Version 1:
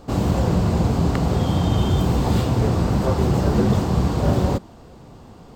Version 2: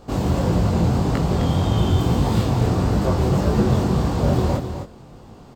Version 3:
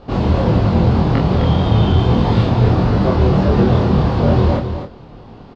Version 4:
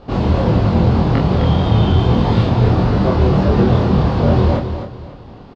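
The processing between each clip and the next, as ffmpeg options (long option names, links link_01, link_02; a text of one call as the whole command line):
ffmpeg -i in.wav -af "flanger=delay=18.5:depth=5.6:speed=1.7,aecho=1:1:259:0.376,volume=2.5dB" out.wav
ffmpeg -i in.wav -filter_complex "[0:a]lowpass=frequency=4400:width=0.5412,lowpass=frequency=4400:width=1.3066,asplit=2[link_01][link_02];[link_02]adelay=26,volume=-4dB[link_03];[link_01][link_03]amix=inputs=2:normalize=0,volume=4dB" out.wav
ffmpeg -i in.wav -af "aecho=1:1:546:0.106" out.wav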